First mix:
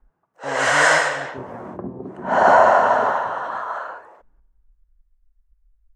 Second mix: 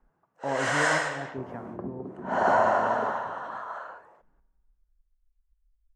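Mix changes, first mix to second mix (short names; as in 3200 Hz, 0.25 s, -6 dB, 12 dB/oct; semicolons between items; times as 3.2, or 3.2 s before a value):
first sound -9.5 dB; second sound -5.5 dB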